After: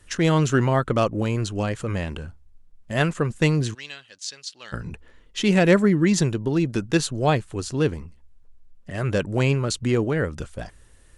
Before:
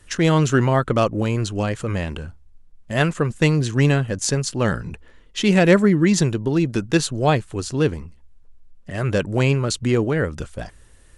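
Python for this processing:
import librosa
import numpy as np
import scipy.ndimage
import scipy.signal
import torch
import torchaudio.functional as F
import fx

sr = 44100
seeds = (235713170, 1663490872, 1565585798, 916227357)

y = fx.bandpass_q(x, sr, hz=3900.0, q=2.1, at=(3.73, 4.72), fade=0.02)
y = F.gain(torch.from_numpy(y), -2.5).numpy()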